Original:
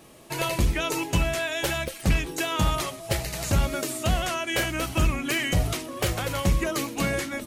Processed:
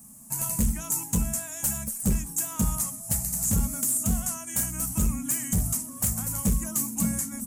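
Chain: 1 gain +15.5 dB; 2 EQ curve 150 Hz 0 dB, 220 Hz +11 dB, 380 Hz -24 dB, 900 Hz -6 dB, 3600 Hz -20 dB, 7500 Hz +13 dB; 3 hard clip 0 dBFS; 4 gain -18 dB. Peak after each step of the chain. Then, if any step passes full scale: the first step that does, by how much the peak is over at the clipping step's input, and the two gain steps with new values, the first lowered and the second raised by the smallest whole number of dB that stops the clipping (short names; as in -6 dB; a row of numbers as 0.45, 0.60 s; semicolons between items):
+1.0, +8.5, 0.0, -18.0 dBFS; step 1, 8.5 dB; step 1 +6.5 dB, step 4 -9 dB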